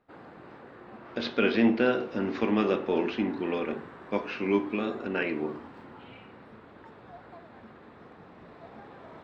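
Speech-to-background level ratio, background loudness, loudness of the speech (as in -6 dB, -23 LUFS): 19.0 dB, -47.5 LUFS, -28.5 LUFS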